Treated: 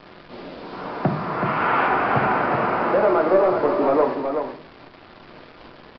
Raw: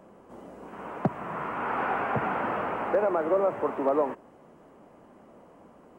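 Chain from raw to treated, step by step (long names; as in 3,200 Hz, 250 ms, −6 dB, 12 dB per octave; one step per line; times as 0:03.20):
0:01.45–0:01.87: high-shelf EQ 2,300 Hz +11 dB
in parallel at −7.5 dB: sine wavefolder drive 4 dB, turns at −13.5 dBFS
on the sum: bit reduction 7 bits
downsampling to 11,025 Hz
on a send: single-tap delay 377 ms −6 dB
on the sum: rectangular room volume 50 cubic metres, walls mixed, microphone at 0.39 metres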